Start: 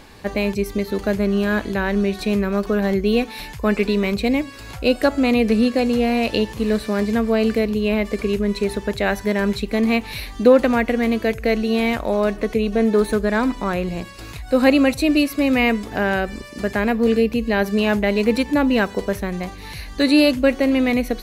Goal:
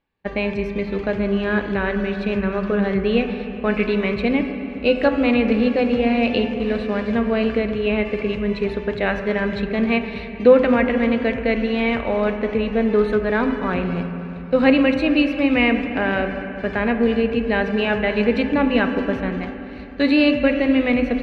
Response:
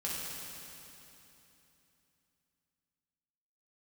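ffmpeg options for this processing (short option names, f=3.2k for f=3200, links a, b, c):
-filter_complex "[0:a]agate=range=-33dB:threshold=-24dB:ratio=3:detection=peak,lowpass=f=2.9k:t=q:w=1.7,asplit=2[a][b];[1:a]atrim=start_sample=2205,lowpass=2.1k[c];[b][c]afir=irnorm=-1:irlink=0,volume=-6dB[d];[a][d]amix=inputs=2:normalize=0,volume=-4dB"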